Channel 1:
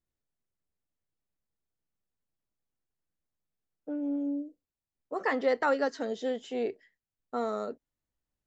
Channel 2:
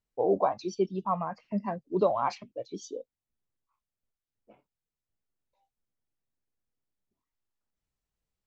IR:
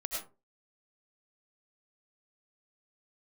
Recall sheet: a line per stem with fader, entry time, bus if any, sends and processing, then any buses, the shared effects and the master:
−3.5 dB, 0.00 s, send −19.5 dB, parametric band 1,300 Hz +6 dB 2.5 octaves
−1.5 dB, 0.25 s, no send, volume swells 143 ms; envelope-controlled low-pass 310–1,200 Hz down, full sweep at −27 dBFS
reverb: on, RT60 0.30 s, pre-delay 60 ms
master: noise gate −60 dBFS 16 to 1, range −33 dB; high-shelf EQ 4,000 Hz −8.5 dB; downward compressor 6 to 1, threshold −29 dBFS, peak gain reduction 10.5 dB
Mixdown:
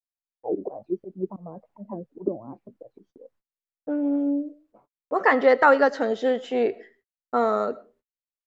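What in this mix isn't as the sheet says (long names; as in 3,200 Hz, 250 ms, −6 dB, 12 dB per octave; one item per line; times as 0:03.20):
stem 1 −3.5 dB → +6.0 dB
master: missing downward compressor 6 to 1, threshold −29 dBFS, peak gain reduction 10.5 dB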